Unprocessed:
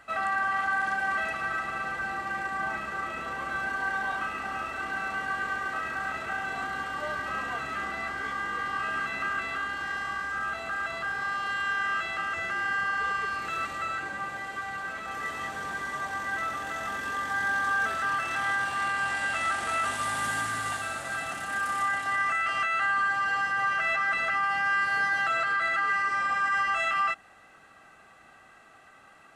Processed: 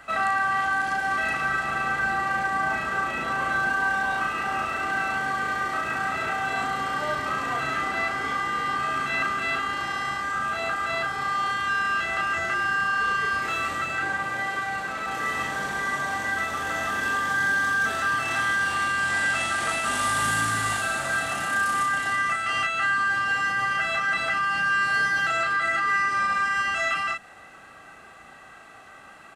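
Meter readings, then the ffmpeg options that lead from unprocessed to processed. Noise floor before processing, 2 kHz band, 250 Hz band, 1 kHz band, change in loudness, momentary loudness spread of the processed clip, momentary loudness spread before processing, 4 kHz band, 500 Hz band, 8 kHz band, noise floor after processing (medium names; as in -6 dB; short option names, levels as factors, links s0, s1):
-55 dBFS, +4.0 dB, +6.5 dB, +4.0 dB, +4.0 dB, 5 LU, 7 LU, +6.5 dB, +5.5 dB, +7.5 dB, -47 dBFS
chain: -filter_complex "[0:a]acrossover=split=360|3000[s0][s1][s2];[s1]acompressor=threshold=0.0282:ratio=6[s3];[s0][s3][s2]amix=inputs=3:normalize=0,asplit=2[s4][s5];[s5]adelay=36,volume=0.631[s6];[s4][s6]amix=inputs=2:normalize=0,volume=2"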